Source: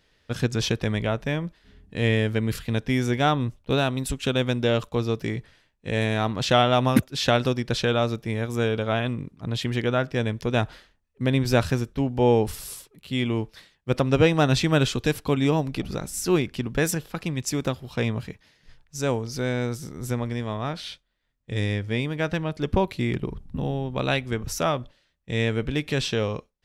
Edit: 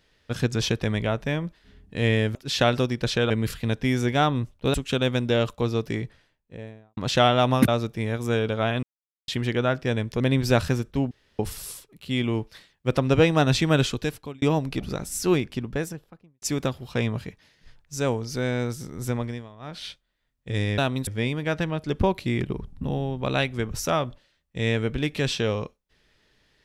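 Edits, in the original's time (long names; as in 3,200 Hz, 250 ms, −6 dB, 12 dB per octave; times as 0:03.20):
0:03.79–0:04.08: move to 0:21.80
0:05.21–0:06.31: fade out and dull
0:07.02–0:07.97: move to 0:02.35
0:09.12–0:09.57: silence
0:10.49–0:11.22: remove
0:12.13–0:12.41: fill with room tone
0:14.86–0:15.44: fade out
0:16.34–0:17.44: fade out and dull
0:20.24–0:20.88: duck −17 dB, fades 0.27 s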